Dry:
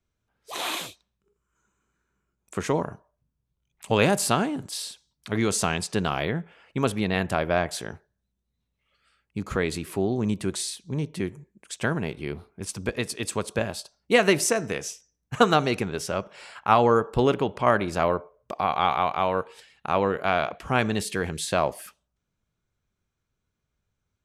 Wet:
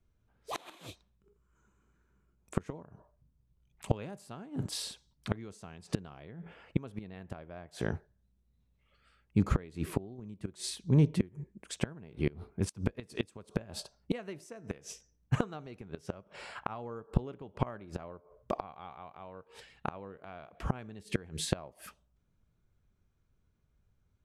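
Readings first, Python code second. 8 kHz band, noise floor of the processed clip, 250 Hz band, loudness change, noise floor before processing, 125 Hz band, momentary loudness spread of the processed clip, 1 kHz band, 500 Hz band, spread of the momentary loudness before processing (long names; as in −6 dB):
−14.0 dB, −74 dBFS, −8.0 dB, −11.5 dB, −81 dBFS, −3.5 dB, 15 LU, −18.5 dB, −15.5 dB, 15 LU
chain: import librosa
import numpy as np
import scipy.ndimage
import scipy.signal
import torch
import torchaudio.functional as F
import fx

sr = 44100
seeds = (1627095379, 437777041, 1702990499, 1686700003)

y = fx.gate_flip(x, sr, shuts_db=-18.0, range_db=-25)
y = fx.tilt_eq(y, sr, slope=-2.0)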